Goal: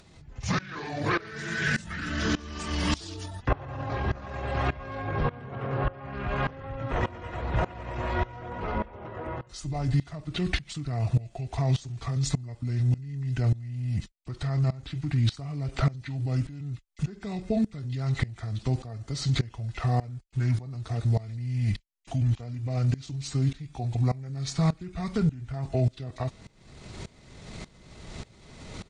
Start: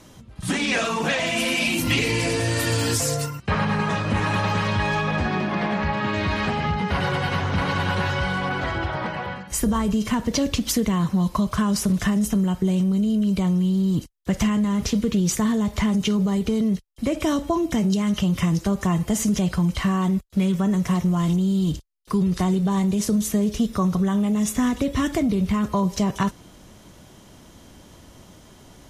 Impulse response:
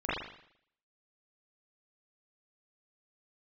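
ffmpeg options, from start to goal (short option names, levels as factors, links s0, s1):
-af "acompressor=mode=upward:threshold=0.0562:ratio=2.5,asetrate=28595,aresample=44100,atempo=1.54221,aeval=exprs='val(0)*pow(10,-21*if(lt(mod(-1.7*n/s,1),2*abs(-1.7)/1000),1-mod(-1.7*n/s,1)/(2*abs(-1.7)/1000),(mod(-1.7*n/s,1)-2*abs(-1.7)/1000)/(1-2*abs(-1.7)/1000))/20)':c=same"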